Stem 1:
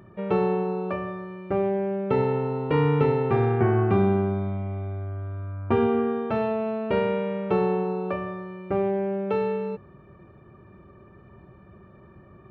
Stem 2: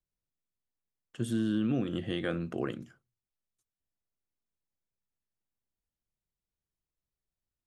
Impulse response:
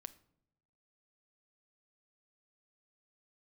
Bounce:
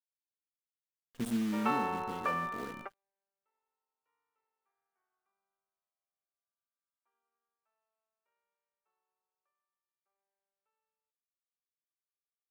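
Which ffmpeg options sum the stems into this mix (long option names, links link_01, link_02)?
-filter_complex "[0:a]highpass=frequency=1100:width_type=q:width=1.5,adelay=1350,volume=-1dB[link_01];[1:a]equalizer=frequency=3700:width=0.36:gain=-8.5,aecho=1:1:4.3:0.65,acrusher=bits=7:dc=4:mix=0:aa=0.000001,volume=-0.5dB,afade=type=out:start_time=0.97:duration=0.78:silence=0.354813,asplit=2[link_02][link_03];[link_03]apad=whole_len=611018[link_04];[link_01][link_04]sidechaingate=range=-56dB:threshold=-52dB:ratio=16:detection=peak[link_05];[link_05][link_02]amix=inputs=2:normalize=0"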